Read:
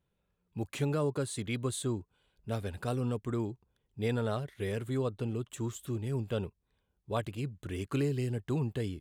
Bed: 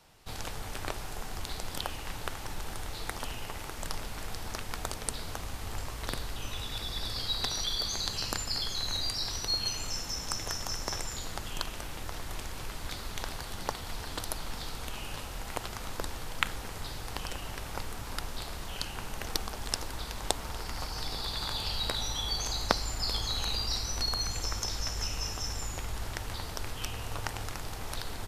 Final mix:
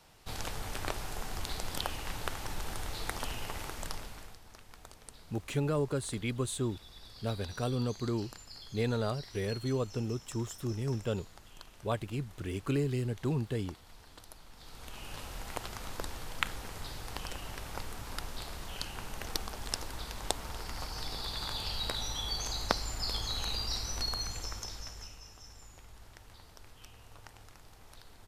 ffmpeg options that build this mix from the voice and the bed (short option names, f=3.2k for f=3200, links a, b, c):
-filter_complex "[0:a]adelay=4750,volume=0dB[a];[1:a]volume=13.5dB,afade=t=out:st=3.62:d=0.77:silence=0.149624,afade=t=in:st=14.55:d=0.73:silence=0.211349,afade=t=out:st=24.02:d=1.19:silence=0.199526[b];[a][b]amix=inputs=2:normalize=0"